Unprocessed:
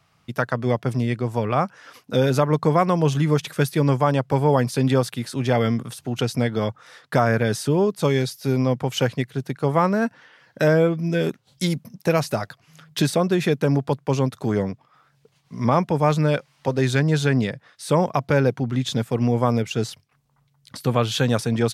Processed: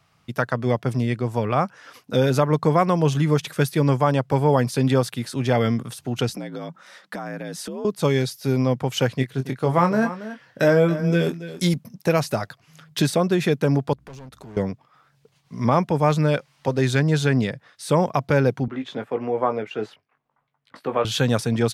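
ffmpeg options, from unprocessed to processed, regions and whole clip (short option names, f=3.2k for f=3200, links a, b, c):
-filter_complex "[0:a]asettb=1/sr,asplit=3[a][b][c];[a]atrim=end=6.294[d];[b]atrim=start=6.29:end=7.85,asetpts=PTS-STARTPTS,afade=t=in:d=0.004:c=qsin,afade=t=out:st=1.556:d=0.004:c=qsin,afreqshift=54,acompressor=threshold=-29dB:ratio=6:attack=3.2:release=140:knee=1:detection=peak[e];[c]atrim=start=7.846[f];[d][e]acrossfade=d=0.004:c1=hsin:c2=qsin[g];[g][f]acrossfade=d=0.004:c1=qsin:c2=hsin,asettb=1/sr,asplit=3[h][i][j];[h]atrim=end=9.144[k];[i]atrim=start=9.14:end=11.74,asetpts=PTS-STARTPTS,afade=t=in:d=0.004:c=qsin,afade=t=out:st=2.596:d=0.004:c=qsin,asplit=2[l][m];[m]adelay=23,volume=-7.5dB[n];[l][n]amix=inputs=2:normalize=0,atrim=end_sample=114660,aecho=1:1:278:0.211,atrim=end_sample=114660[o];[j]atrim=start=11.736[p];[k][o]acrossfade=d=0.004:c1=hsin:c2=qsin[q];[q][p]acrossfade=d=0.004:c1=qsin:c2=hsin,asettb=1/sr,asplit=3[r][s][t];[r]atrim=end=13.934[u];[s]atrim=start=13.93:end=14.57,asetpts=PTS-STARTPTS,afade=t=in:d=0.004:c=qsin,afade=t=out:st=0.636:d=0.004:c=qsin,asoftclip=type=hard:threshold=-23dB,acompressor=threshold=-39dB:ratio=8:attack=3.2:release=140:knee=1:detection=peak,aeval=exprs='val(0)+0.00126*(sin(2*PI*60*n/s)+sin(2*PI*2*60*n/s)/2+sin(2*PI*3*60*n/s)/3+sin(2*PI*4*60*n/s)/4+sin(2*PI*5*60*n/s)/5)':c=same[v];[t]atrim=start=14.566[w];[u][v]acrossfade=d=0.004:c1=hsin:c2=qsin[x];[x][w]acrossfade=d=0.004:c1=qsin:c2=hsin,asettb=1/sr,asplit=3[y][z][aa];[y]atrim=end=18.684[ab];[z]atrim=start=18.68:end=21.05,asetpts=PTS-STARTPTS,afade=t=in:d=0.004:c=qsin,afade=t=out:st=2.366:d=0.004:c=qsin,acrossover=split=270 2600:gain=0.1 1 0.0708[ac][ad][ae];[ac][ad][ae]amix=inputs=3:normalize=0,asplit=2[af][ag];[ag]adelay=19,volume=-7.5dB[ah];[af][ah]amix=inputs=2:normalize=0,atrim=end_sample=104517[ai];[aa]atrim=start=21.046[aj];[ab][ai]acrossfade=d=0.004:c1=hsin:c2=qsin[ak];[ak][aj]acrossfade=d=0.004:c1=qsin:c2=hsin"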